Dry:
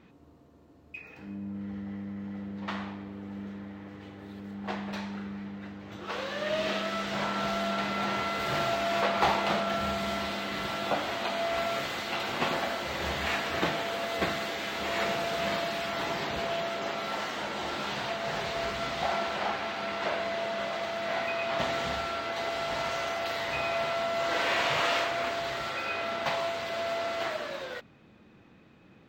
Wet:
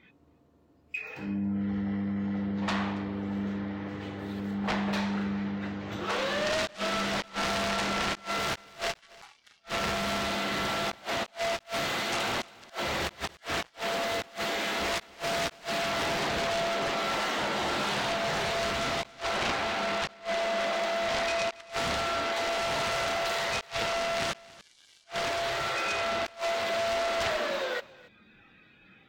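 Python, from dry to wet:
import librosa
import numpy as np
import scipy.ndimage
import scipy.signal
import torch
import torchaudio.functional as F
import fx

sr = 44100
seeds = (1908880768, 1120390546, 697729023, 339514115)

p1 = fx.cheby_harmonics(x, sr, harmonics=(3, 5, 6, 7), levels_db=(-43, -16, -42, -8), full_scale_db=-11.5)
p2 = fx.rider(p1, sr, range_db=4, speed_s=2.0)
p3 = p1 + (p2 * 10.0 ** (0.0 / 20.0))
p4 = fx.gate_flip(p3, sr, shuts_db=-13.0, range_db=-32)
p5 = fx.noise_reduce_blind(p4, sr, reduce_db=14)
p6 = p5 + fx.echo_single(p5, sr, ms=278, db=-22.0, dry=0)
y = fx.end_taper(p6, sr, db_per_s=600.0)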